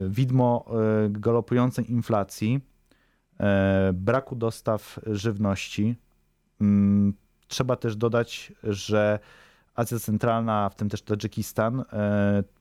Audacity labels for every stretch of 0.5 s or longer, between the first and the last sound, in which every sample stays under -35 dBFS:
2.600000	3.400000	silence
5.950000	6.610000	silence
9.180000	9.780000	silence